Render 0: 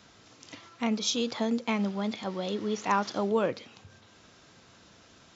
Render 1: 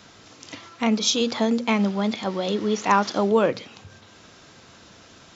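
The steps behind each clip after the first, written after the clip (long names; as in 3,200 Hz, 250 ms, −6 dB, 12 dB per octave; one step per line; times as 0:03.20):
mains-hum notches 60/120/180/240 Hz
level +7.5 dB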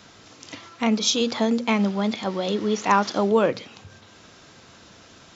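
no processing that can be heard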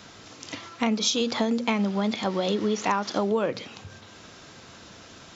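downward compressor 6 to 1, threshold −23 dBFS, peak gain reduction 10 dB
level +2 dB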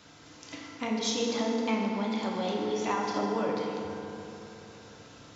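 feedback delay network reverb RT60 3.3 s, low-frequency decay 1.2×, high-frequency decay 0.5×, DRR −2 dB
level −9 dB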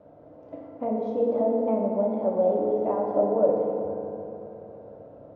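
low-pass with resonance 600 Hz, resonance Q 6.9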